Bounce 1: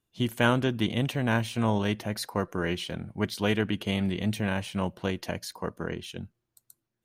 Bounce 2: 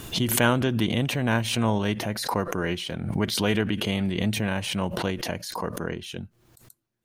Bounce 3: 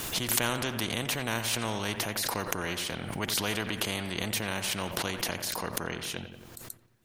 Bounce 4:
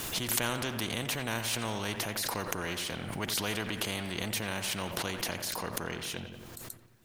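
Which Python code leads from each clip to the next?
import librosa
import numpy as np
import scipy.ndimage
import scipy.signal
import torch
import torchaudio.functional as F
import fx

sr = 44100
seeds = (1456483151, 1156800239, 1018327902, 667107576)

y1 = fx.pre_swell(x, sr, db_per_s=49.0)
y1 = F.gain(torch.from_numpy(y1), 1.5).numpy()
y2 = fx.echo_wet_lowpass(y1, sr, ms=89, feedback_pct=48, hz=2600.0, wet_db=-14.5)
y2 = fx.spectral_comp(y2, sr, ratio=2.0)
y3 = fx.law_mismatch(y2, sr, coded='mu')
y3 = F.gain(torch.from_numpy(y3), -3.5).numpy()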